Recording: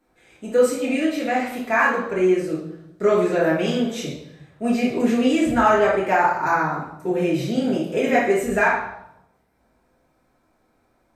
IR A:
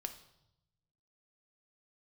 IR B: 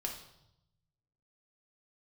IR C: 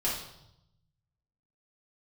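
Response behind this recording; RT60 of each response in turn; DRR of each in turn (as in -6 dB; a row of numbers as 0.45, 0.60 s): C; 0.85, 0.80, 0.80 s; 6.5, 0.0, -7.5 dB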